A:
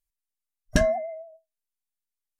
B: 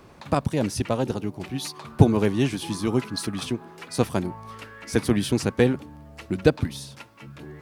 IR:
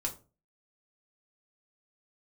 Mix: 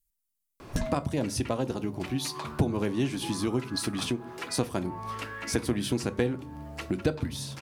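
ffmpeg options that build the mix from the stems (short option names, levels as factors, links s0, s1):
-filter_complex "[0:a]lowshelf=f=320:t=q:w=1.5:g=11,crystalizer=i=3:c=0,asoftclip=type=tanh:threshold=0.335,volume=0.501[s0];[1:a]adelay=600,volume=1.12,asplit=2[s1][s2];[s2]volume=0.422[s3];[2:a]atrim=start_sample=2205[s4];[s3][s4]afir=irnorm=-1:irlink=0[s5];[s0][s1][s5]amix=inputs=3:normalize=0,acompressor=threshold=0.0355:ratio=2.5"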